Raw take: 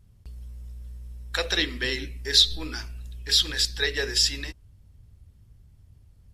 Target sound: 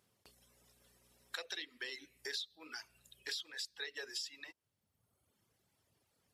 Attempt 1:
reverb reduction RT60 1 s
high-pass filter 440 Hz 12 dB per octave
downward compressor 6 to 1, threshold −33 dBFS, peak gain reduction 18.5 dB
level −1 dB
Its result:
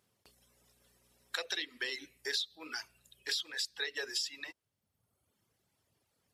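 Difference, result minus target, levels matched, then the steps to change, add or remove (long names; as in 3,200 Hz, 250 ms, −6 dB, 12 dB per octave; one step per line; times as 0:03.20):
downward compressor: peak gain reduction −6.5 dB
change: downward compressor 6 to 1, threshold −41 dBFS, peak gain reduction 25 dB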